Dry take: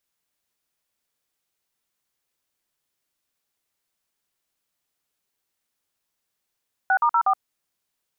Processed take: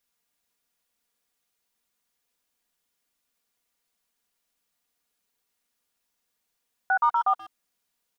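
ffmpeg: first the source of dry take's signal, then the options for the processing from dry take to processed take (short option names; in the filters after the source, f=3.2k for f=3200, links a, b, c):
-f lavfi -i "aevalsrc='0.119*clip(min(mod(t,0.121),0.072-mod(t,0.121))/0.002,0,1)*(eq(floor(t/0.121),0)*(sin(2*PI*770*mod(t,0.121))+sin(2*PI*1477*mod(t,0.121)))+eq(floor(t/0.121),1)*(sin(2*PI*941*mod(t,0.121))+sin(2*PI*1209*mod(t,0.121)))+eq(floor(t/0.121),2)*(sin(2*PI*941*mod(t,0.121))+sin(2*PI*1336*mod(t,0.121)))+eq(floor(t/0.121),3)*(sin(2*PI*770*mod(t,0.121))+sin(2*PI*1209*mod(t,0.121))))':d=0.484:s=44100"
-filter_complex "[0:a]alimiter=limit=-17dB:level=0:latency=1:release=141,aecho=1:1:4.2:0.5,asplit=2[a][b];[b]adelay=130,highpass=300,lowpass=3.4k,asoftclip=type=hard:threshold=-22.5dB,volume=-17dB[c];[a][c]amix=inputs=2:normalize=0"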